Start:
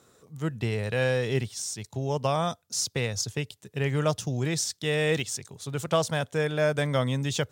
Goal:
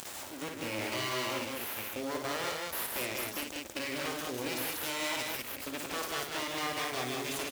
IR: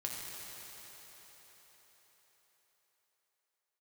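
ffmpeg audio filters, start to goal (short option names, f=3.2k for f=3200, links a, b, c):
-filter_complex "[0:a]equalizer=f=2.4k:t=o:w=0.24:g=8,asplit=2[a][b];[b]alimiter=limit=-18.5dB:level=0:latency=1:release=349,volume=1dB[c];[a][c]amix=inputs=2:normalize=0,aeval=exprs='abs(val(0))':c=same,acrusher=bits=3:mode=log:mix=0:aa=0.000001,equalizer=f=160:t=o:w=1.2:g=-10,asoftclip=type=hard:threshold=-18dB,aecho=1:1:55.39|154.5|192.4:0.562|0.501|0.708,acrusher=bits=7:mix=0:aa=0.000001,acompressor=mode=upward:threshold=-18dB:ratio=2.5,highpass=100,volume=-8.5dB"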